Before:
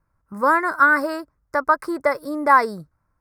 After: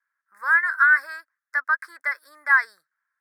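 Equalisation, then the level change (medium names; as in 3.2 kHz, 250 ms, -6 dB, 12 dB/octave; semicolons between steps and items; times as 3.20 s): resonant high-pass 1.7 kHz, resonance Q 6.7; Butterworth band-stop 2.8 kHz, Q 6.8; -8.5 dB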